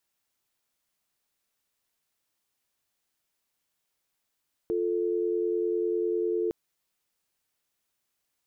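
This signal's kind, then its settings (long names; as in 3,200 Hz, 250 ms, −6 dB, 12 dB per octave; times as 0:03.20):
call progress tone dial tone, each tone −27.5 dBFS 1.81 s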